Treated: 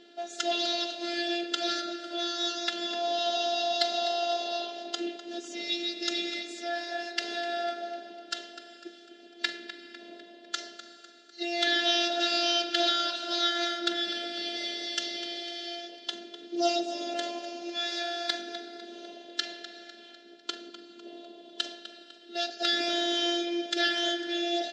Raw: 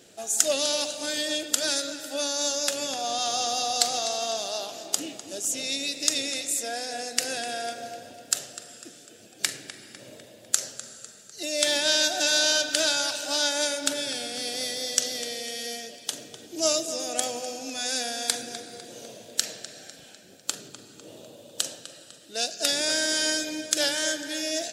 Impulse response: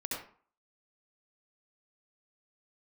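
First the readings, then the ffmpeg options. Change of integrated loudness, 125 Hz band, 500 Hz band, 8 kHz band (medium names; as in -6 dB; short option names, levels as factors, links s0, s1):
-4.0 dB, under -15 dB, -2.0 dB, -17.5 dB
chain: -af "afftfilt=real='hypot(re,im)*cos(PI*b)':imag='0':win_size=512:overlap=0.75,highpass=f=190:w=0.5412,highpass=f=190:w=1.3066,equalizer=f=210:t=q:w=4:g=6,equalizer=f=320:t=q:w=4:g=-4,equalizer=f=470:t=q:w=4:g=3,equalizer=f=670:t=q:w=4:g=-5,equalizer=f=1100:t=q:w=4:g=-10,equalizer=f=2400:t=q:w=4:g=-8,lowpass=f=3800:w=0.5412,lowpass=f=3800:w=1.3066,acontrast=87"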